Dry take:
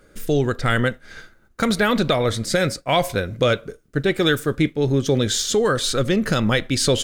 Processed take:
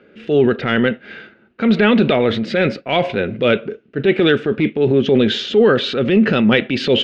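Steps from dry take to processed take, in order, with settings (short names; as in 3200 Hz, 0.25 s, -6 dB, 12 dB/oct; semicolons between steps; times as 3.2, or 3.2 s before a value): hard clip -9 dBFS, distortion -28 dB; speaker cabinet 160–3300 Hz, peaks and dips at 220 Hz +8 dB, 400 Hz +7 dB, 1100 Hz -6 dB, 2700 Hz +9 dB; transient shaper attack -6 dB, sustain +4 dB; gain +3.5 dB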